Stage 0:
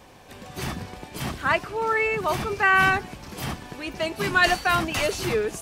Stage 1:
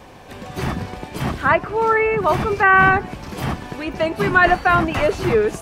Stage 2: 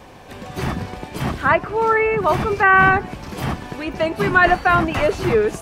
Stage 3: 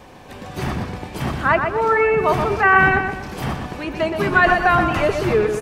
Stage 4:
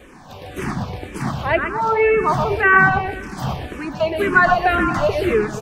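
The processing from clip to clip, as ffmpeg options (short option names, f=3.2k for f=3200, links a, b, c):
-filter_complex "[0:a]highshelf=f=3.6k:g=-7,acrossover=split=2200[a][b];[b]acompressor=threshold=-44dB:ratio=6[c];[a][c]amix=inputs=2:normalize=0,volume=8dB"
-af anull
-filter_complex "[0:a]asplit=2[a][b];[b]adelay=123,lowpass=f=4.2k:p=1,volume=-6dB,asplit=2[c][d];[d]adelay=123,lowpass=f=4.2k:p=1,volume=0.38,asplit=2[e][f];[f]adelay=123,lowpass=f=4.2k:p=1,volume=0.38,asplit=2[g][h];[h]adelay=123,lowpass=f=4.2k:p=1,volume=0.38,asplit=2[i][j];[j]adelay=123,lowpass=f=4.2k:p=1,volume=0.38[k];[a][c][e][g][i][k]amix=inputs=6:normalize=0,volume=-1dB"
-filter_complex "[0:a]asplit=2[a][b];[b]afreqshift=-1.9[c];[a][c]amix=inputs=2:normalize=1,volume=2.5dB"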